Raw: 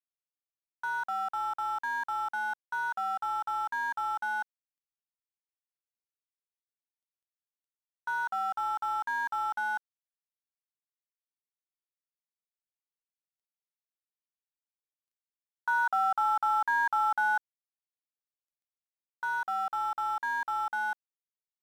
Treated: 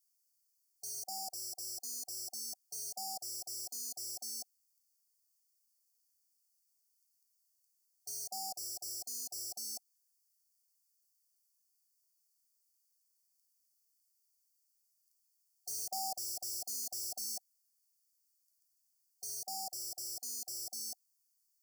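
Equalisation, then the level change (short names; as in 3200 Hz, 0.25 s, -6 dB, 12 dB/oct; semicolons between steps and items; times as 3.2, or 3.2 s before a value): brick-wall FIR band-stop 760–4300 Hz; pre-emphasis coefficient 0.9; bell 5200 Hz +5.5 dB 1.5 oct; +15.0 dB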